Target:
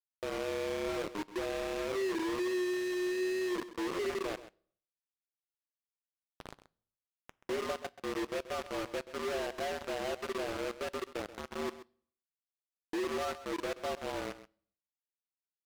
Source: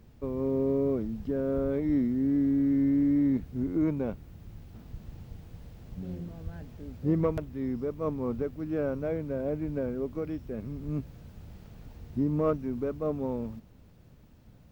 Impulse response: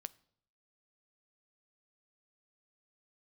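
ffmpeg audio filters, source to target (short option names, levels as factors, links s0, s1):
-filter_complex "[0:a]agate=range=0.0224:threshold=0.00501:ratio=3:detection=peak,highpass=f=240:t=q:w=0.5412,highpass=f=240:t=q:w=1.307,lowpass=f=2000:t=q:w=0.5176,lowpass=f=2000:t=q:w=0.7071,lowpass=f=2000:t=q:w=1.932,afreqshift=85,equalizer=f=510:t=o:w=1.4:g=-6,bandreject=f=50:t=h:w=6,bandreject=f=100:t=h:w=6,bandreject=f=150:t=h:w=6,bandreject=f=200:t=h:w=6,bandreject=f=250:t=h:w=6,bandreject=f=300:t=h:w=6,bandreject=f=350:t=h:w=6,bandreject=f=400:t=h:w=6,bandreject=f=450:t=h:w=6,bandreject=f=500:t=h:w=6,acompressor=threshold=0.00794:ratio=3,atempo=0.94,acrusher=bits=6:mix=0:aa=0.000001,aemphasis=mode=reproduction:type=75kf,aecho=1:1:131:0.188,asplit=2[s0][s1];[1:a]atrim=start_sample=2205,highshelf=f=2400:g=11.5[s2];[s1][s2]afir=irnorm=-1:irlink=0,volume=1.5[s3];[s0][s3]amix=inputs=2:normalize=0"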